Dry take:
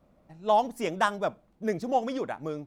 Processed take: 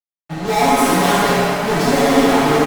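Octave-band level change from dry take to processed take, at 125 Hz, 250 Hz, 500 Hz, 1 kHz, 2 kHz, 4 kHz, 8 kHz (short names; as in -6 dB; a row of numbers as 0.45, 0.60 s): +20.0, +18.0, +13.0, +12.0, +16.0, +19.5, +24.0 dB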